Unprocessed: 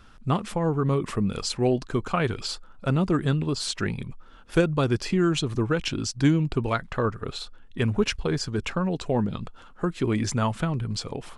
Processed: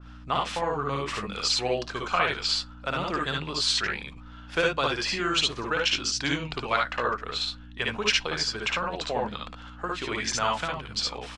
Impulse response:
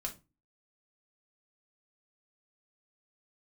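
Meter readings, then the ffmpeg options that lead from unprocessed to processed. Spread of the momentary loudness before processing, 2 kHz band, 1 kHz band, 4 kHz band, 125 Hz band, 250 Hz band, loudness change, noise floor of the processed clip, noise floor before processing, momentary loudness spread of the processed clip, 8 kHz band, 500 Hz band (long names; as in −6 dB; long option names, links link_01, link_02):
8 LU, +5.5 dB, +3.5 dB, +7.5 dB, −13.0 dB, −10.5 dB, −1.0 dB, −45 dBFS, −49 dBFS, 8 LU, +2.5 dB, −3.5 dB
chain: -filter_complex "[0:a]acrossover=split=550 6400:gain=0.126 1 0.0891[link_01][link_02][link_03];[link_01][link_02][link_03]amix=inputs=3:normalize=0,aeval=exprs='val(0)+0.00501*(sin(2*PI*60*n/s)+sin(2*PI*2*60*n/s)/2+sin(2*PI*3*60*n/s)/3+sin(2*PI*4*60*n/s)/4+sin(2*PI*5*60*n/s)/5)':channel_layout=same,aecho=1:1:57|71:0.708|0.668,asplit=2[link_04][link_05];[1:a]atrim=start_sample=2205[link_06];[link_05][link_06]afir=irnorm=-1:irlink=0,volume=-16dB[link_07];[link_04][link_07]amix=inputs=2:normalize=0,adynamicequalizer=threshold=0.00891:dfrequency=2000:dqfactor=0.7:tfrequency=2000:tqfactor=0.7:attack=5:release=100:ratio=0.375:range=2.5:mode=boostabove:tftype=highshelf"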